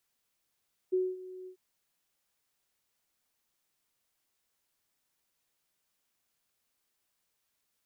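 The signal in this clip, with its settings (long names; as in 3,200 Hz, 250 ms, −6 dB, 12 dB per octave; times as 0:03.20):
note with an ADSR envelope sine 370 Hz, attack 17 ms, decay 224 ms, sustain −18 dB, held 0.55 s, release 92 ms −24 dBFS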